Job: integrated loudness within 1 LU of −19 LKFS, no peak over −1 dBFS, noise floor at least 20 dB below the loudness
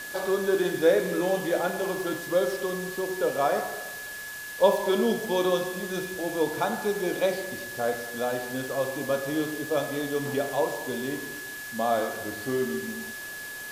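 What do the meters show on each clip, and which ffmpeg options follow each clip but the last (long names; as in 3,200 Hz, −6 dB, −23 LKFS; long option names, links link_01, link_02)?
interfering tone 1,700 Hz; level of the tone −37 dBFS; background noise floor −38 dBFS; target noise floor −48 dBFS; integrated loudness −28.0 LKFS; sample peak −7.5 dBFS; target loudness −19.0 LKFS
→ -af "bandreject=frequency=1700:width=30"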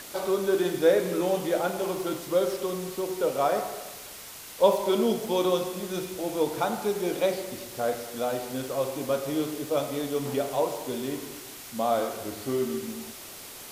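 interfering tone none found; background noise floor −43 dBFS; target noise floor −48 dBFS
→ -af "afftdn=noise_reduction=6:noise_floor=-43"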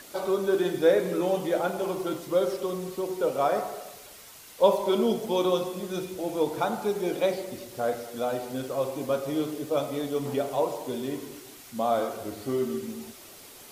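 background noise floor −48 dBFS; integrated loudness −28.0 LKFS; sample peak −8.0 dBFS; target loudness −19.0 LKFS
→ -af "volume=9dB,alimiter=limit=-1dB:level=0:latency=1"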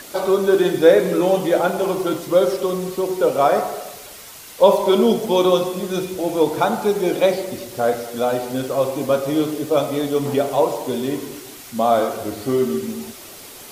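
integrated loudness −19.0 LKFS; sample peak −1.0 dBFS; background noise floor −39 dBFS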